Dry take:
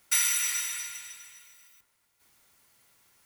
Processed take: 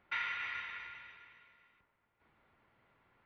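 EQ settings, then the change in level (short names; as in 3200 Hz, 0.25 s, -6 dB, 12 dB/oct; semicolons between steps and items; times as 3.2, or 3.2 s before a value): Gaussian blur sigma 3.8 samples; +2.0 dB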